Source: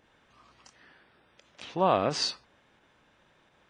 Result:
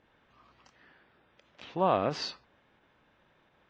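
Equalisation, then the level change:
high-frequency loss of the air 150 metres
−1.5 dB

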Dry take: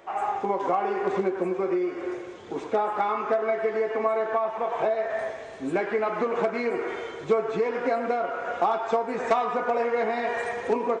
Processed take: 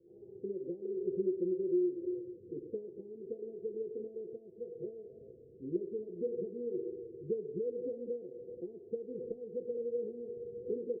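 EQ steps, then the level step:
Chebyshev low-pass with heavy ripple 510 Hz, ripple 9 dB
−4.0 dB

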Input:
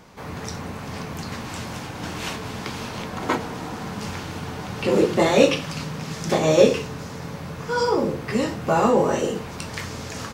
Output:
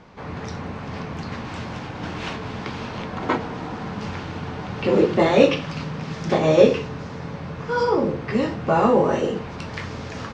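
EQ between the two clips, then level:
high-frequency loss of the air 160 metres
+1.5 dB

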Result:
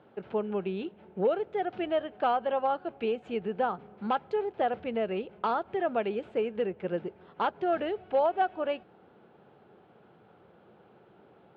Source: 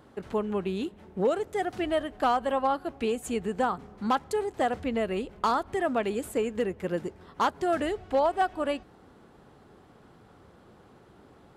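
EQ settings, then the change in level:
loudspeaker in its box 170–3,000 Hz, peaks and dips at 270 Hz −9 dB, 1,100 Hz −7 dB, 1,900 Hz −7 dB
0.0 dB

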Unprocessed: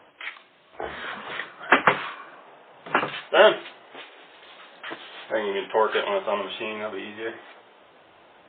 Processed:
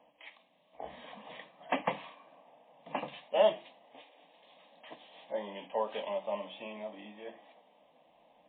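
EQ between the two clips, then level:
high-shelf EQ 2,900 Hz −8 dB
phaser with its sweep stopped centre 380 Hz, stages 6
−7.5 dB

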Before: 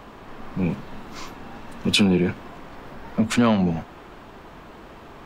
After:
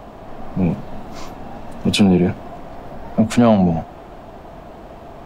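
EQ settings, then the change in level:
low-shelf EQ 390 Hz +10.5 dB
parametric band 680 Hz +12.5 dB 0.62 octaves
high-shelf EQ 4,300 Hz +5.5 dB
−3.0 dB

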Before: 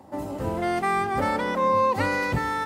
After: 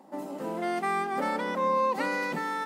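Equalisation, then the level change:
linear-phase brick-wall high-pass 160 Hz
−4.5 dB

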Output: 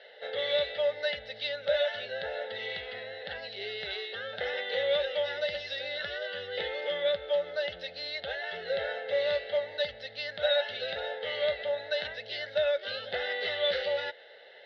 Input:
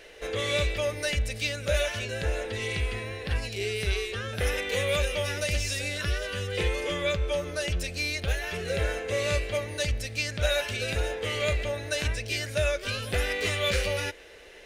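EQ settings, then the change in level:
loudspeaker in its box 310–4,000 Hz, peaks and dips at 320 Hz +8 dB, 560 Hz +5 dB, 840 Hz +6 dB, 2,200 Hz +8 dB, 3,800 Hz +6 dB
phaser with its sweep stopped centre 1,600 Hz, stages 8
−3.0 dB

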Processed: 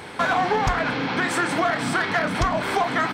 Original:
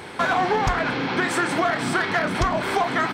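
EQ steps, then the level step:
notch filter 370 Hz, Q 12
0.0 dB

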